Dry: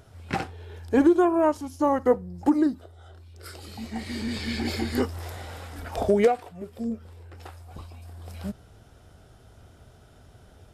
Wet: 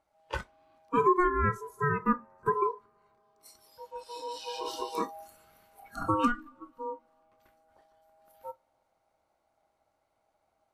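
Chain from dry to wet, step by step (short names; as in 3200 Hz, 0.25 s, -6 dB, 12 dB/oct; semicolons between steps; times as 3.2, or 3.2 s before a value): ring modulator 720 Hz; two-slope reverb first 0.33 s, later 4.5 s, from -18 dB, DRR 12 dB; spectral noise reduction 17 dB; gain -3.5 dB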